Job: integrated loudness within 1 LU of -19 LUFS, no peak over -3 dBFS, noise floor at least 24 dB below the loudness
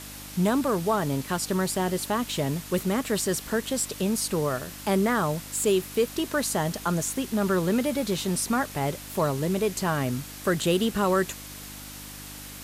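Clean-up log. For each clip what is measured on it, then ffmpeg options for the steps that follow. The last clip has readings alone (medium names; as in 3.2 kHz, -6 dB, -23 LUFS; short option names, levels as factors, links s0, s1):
hum 50 Hz; highest harmonic 300 Hz; hum level -45 dBFS; noise floor -41 dBFS; noise floor target -51 dBFS; loudness -26.5 LUFS; peak level -12.5 dBFS; loudness target -19.0 LUFS
-> -af "bandreject=f=50:t=h:w=4,bandreject=f=100:t=h:w=4,bandreject=f=150:t=h:w=4,bandreject=f=200:t=h:w=4,bandreject=f=250:t=h:w=4,bandreject=f=300:t=h:w=4"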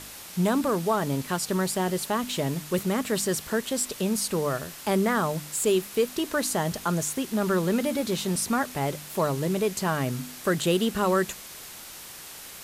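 hum not found; noise floor -43 dBFS; noise floor target -51 dBFS
-> -af "afftdn=nr=8:nf=-43"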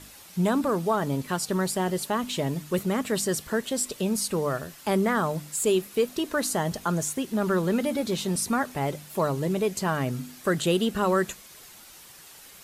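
noise floor -49 dBFS; noise floor target -51 dBFS
-> -af "afftdn=nr=6:nf=-49"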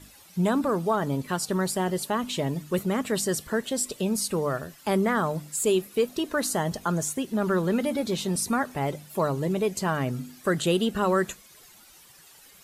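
noise floor -53 dBFS; loudness -27.0 LUFS; peak level -12.0 dBFS; loudness target -19.0 LUFS
-> -af "volume=2.51"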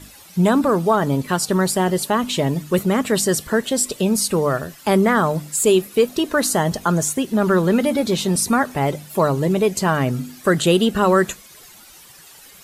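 loudness -19.0 LUFS; peak level -4.0 dBFS; noise floor -45 dBFS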